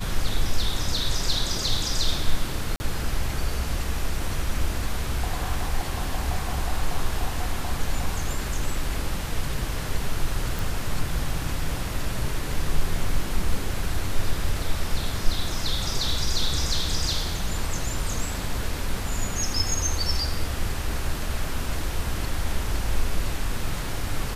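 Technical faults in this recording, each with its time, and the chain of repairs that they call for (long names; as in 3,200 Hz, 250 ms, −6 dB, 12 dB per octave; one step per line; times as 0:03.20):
0:02.76–0:02.80: drop-out 40 ms
0:10.59: click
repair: click removal
repair the gap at 0:02.76, 40 ms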